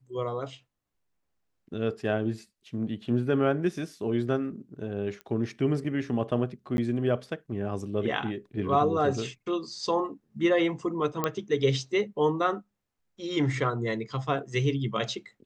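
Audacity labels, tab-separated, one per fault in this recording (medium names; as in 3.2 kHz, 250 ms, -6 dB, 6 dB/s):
5.210000	5.210000	pop -27 dBFS
6.770000	6.780000	dropout 11 ms
11.240000	11.240000	pop -12 dBFS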